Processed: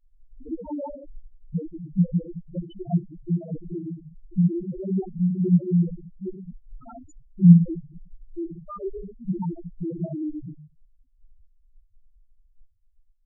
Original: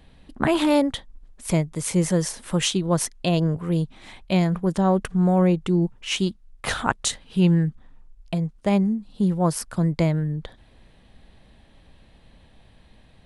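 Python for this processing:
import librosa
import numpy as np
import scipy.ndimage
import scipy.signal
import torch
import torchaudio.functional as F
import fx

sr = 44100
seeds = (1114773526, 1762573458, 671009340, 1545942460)

y = fx.room_shoebox(x, sr, seeds[0], volume_m3=330.0, walls='furnished', distance_m=6.9)
y = fx.cheby_harmonics(y, sr, harmonics=(3, 6, 7, 8), levels_db=(-9, -33, -38, -22), full_scale_db=5.0)
y = fx.spec_topn(y, sr, count=1)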